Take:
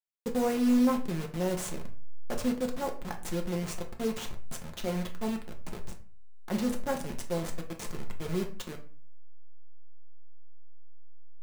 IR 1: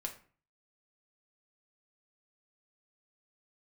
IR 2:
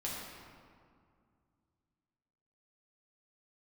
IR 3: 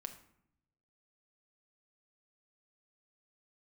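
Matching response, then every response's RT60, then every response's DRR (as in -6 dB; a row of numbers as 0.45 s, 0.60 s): 1; 0.40 s, 2.2 s, 0.70 s; 1.5 dB, -6.0 dB, 5.5 dB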